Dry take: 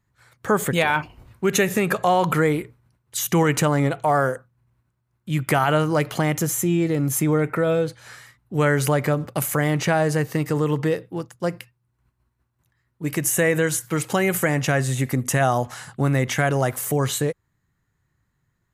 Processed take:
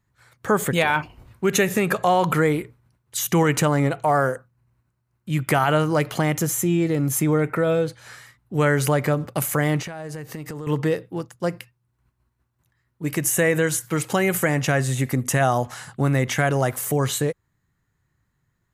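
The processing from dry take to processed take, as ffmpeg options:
ffmpeg -i in.wav -filter_complex "[0:a]asettb=1/sr,asplit=3[link_01][link_02][link_03];[link_01]atrim=end=3.774[link_04];[link_02]atrim=start=3.77:end=5.36,asetpts=PTS-STARTPTS,afade=type=in:duration=0.004:curve=qsin,afade=type=out:start_time=1.586:duration=0.004:curve=qsin,bandreject=frequency=3400:width=12[link_05];[link_03]atrim=start=5.356[link_06];[link_04][link_05]acrossfade=duration=0.004:curve1=hsin:curve2=qsin[link_07];[link_07][link_06]acrossfade=duration=0.004:curve1=qsin:curve2=hsin,asettb=1/sr,asplit=3[link_08][link_09][link_10];[link_08]atrim=end=9.814[link_11];[link_09]atrim=start=9.81:end=10.67,asetpts=PTS-STARTPTS,afade=type=in:duration=0.004:curve=qsin,afade=type=out:start_time=0.856:duration=0.004:curve=qsin,acompressor=threshold=-29dB:ratio=20:attack=3.2:release=140:knee=1:detection=peak[link_12];[link_10]atrim=start=10.666[link_13];[link_11][link_12]acrossfade=duration=0.004:curve1=hsin:curve2=qsin[link_14];[link_14][link_13]acrossfade=duration=0.004:curve1=qsin:curve2=hsin" out.wav

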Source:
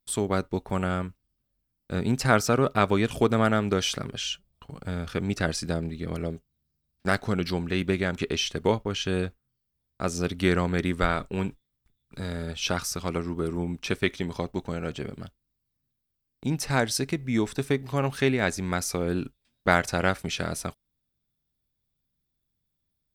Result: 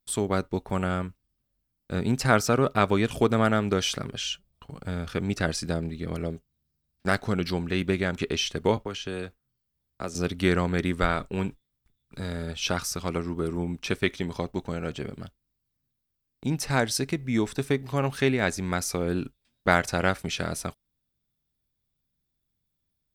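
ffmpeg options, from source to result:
ffmpeg -i in.wav -filter_complex "[0:a]asettb=1/sr,asplit=3[link_01][link_02][link_03];[link_01]atrim=end=8.774[link_04];[link_02]atrim=start=8.77:end=10.15,asetpts=PTS-STARTPTS,afade=type=in:duration=0.004:curve=qsin,afade=type=out:start_time=1.376:duration=0.004:curve=qsin,acrossover=split=250|600|7700[link_05][link_06][link_07][link_08];[link_05]acompressor=threshold=-42dB:ratio=3[link_09];[link_06]acompressor=threshold=-35dB:ratio=3[link_10];[link_07]acompressor=threshold=-36dB:ratio=3[link_11];[link_08]acompressor=threshold=-57dB:ratio=3[link_12];[link_09][link_10][link_11][link_12]amix=inputs=4:normalize=0[link_13];[link_03]atrim=start=10.146[link_14];[link_04][link_13]acrossfade=duration=0.004:curve1=hsin:curve2=qsin[link_15];[link_15][link_14]acrossfade=duration=0.004:curve1=qsin:curve2=hsin" out.wav

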